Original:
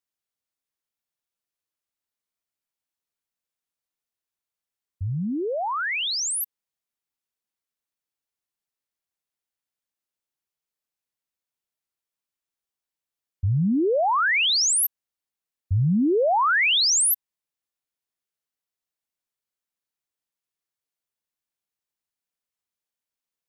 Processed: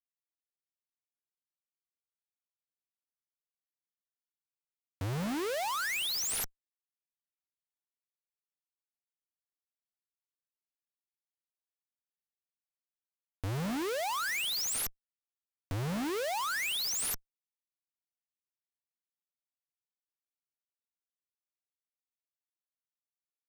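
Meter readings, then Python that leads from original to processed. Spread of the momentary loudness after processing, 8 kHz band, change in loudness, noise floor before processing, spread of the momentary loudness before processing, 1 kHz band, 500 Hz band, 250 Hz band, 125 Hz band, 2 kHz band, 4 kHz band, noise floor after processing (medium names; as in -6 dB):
8 LU, -11.5 dB, -11.5 dB, under -85 dBFS, 11 LU, -12.0 dB, -12.0 dB, -12.5 dB, -12.5 dB, -11.5 dB, -11.5 dB, under -85 dBFS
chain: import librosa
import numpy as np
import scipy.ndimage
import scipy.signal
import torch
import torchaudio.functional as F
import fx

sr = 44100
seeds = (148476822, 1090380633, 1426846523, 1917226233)

p1 = fx.rider(x, sr, range_db=10, speed_s=0.5)
p2 = x + (p1 * 10.0 ** (1.5 / 20.0))
p3 = fx.tube_stage(p2, sr, drive_db=25.0, bias=0.45)
p4 = scipy.signal.sosfilt(scipy.signal.butter(4, 83.0, 'highpass', fs=sr, output='sos'), p3)
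p5 = fx.high_shelf_res(p4, sr, hz=6100.0, db=-12.5, q=1.5)
p6 = p5 + fx.echo_banded(p5, sr, ms=94, feedback_pct=43, hz=680.0, wet_db=-13.5, dry=0)
y = fx.schmitt(p6, sr, flips_db=-40.5)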